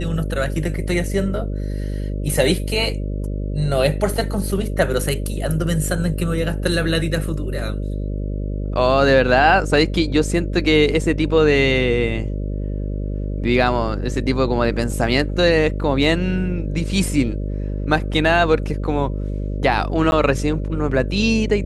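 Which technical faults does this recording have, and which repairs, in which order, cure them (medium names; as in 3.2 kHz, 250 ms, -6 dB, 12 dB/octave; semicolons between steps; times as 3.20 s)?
buzz 50 Hz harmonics 12 -24 dBFS
20.11–20.12 s: dropout 11 ms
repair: de-hum 50 Hz, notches 12; interpolate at 20.11 s, 11 ms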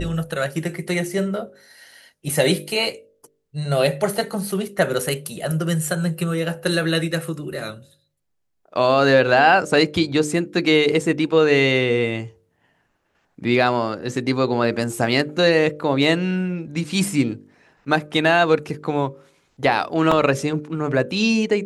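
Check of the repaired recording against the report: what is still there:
nothing left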